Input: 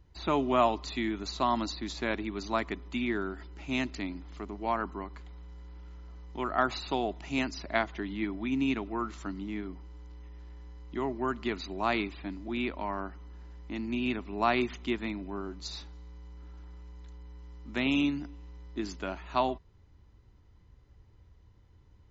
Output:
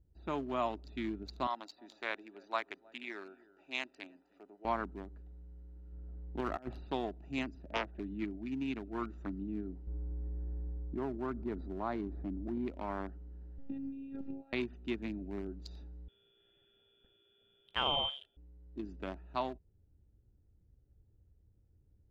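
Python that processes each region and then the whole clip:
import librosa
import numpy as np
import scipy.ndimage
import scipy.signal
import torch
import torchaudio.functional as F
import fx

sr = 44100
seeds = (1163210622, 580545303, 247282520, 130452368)

y = fx.chain(x, sr, fx.highpass(hz=710.0, slope=12),
    fx.echo_single(ms=313, db=-17.5), at=(1.47, 4.65))
y = fx.chain(y, sr, fx.lowpass(hz=2300.0, slope=6),
    fx.over_compress(threshold_db=-33.0, ratio=-0.5),
    fx.clip_hard(threshold_db=-24.0), at=(5.92, 6.85))
y = fx.chain(y, sr, fx.highpass(hz=44.0, slope=24),
    fx.air_absorb(metres=190.0),
    fx.doppler_dist(depth_ms=0.6), at=(7.55, 8.0))
y = fx.chain(y, sr, fx.moving_average(points=16),
    fx.env_flatten(amount_pct=50), at=(9.87, 12.68))
y = fx.chain(y, sr, fx.over_compress(threshold_db=-39.0, ratio=-1.0),
    fx.robotise(hz=273.0), at=(13.58, 14.53))
y = fx.chain(y, sr, fx.high_shelf(hz=2200.0, db=10.5),
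    fx.freq_invert(carrier_hz=3400), at=(16.08, 18.37))
y = fx.wiener(y, sr, points=41)
y = fx.rider(y, sr, range_db=4, speed_s=0.5)
y = y * 10.0 ** (-5.5 / 20.0)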